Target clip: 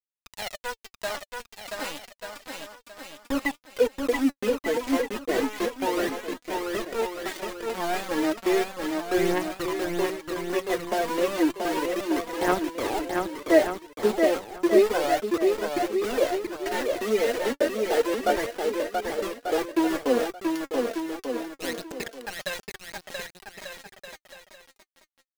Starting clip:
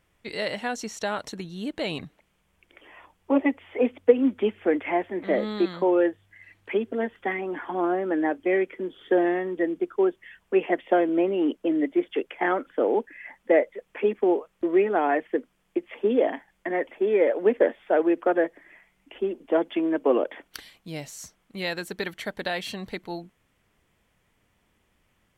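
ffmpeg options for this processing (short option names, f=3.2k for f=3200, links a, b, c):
-af "aeval=exprs='val(0)*gte(abs(val(0)),0.0631)':c=same,aphaser=in_gain=1:out_gain=1:delay=4.6:decay=0.67:speed=0.32:type=triangular,aecho=1:1:680|1190|1572|1859|2075:0.631|0.398|0.251|0.158|0.1,volume=-5dB"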